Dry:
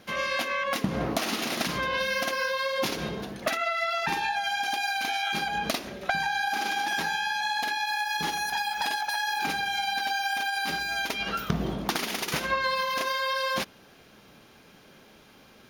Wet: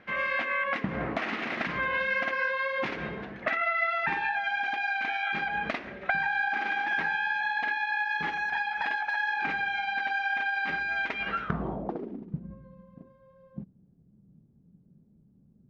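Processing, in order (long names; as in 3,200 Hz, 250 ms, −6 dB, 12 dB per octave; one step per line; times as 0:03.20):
low-pass filter sweep 2,000 Hz → 170 Hz, 0:11.40–0:12.36
level −4 dB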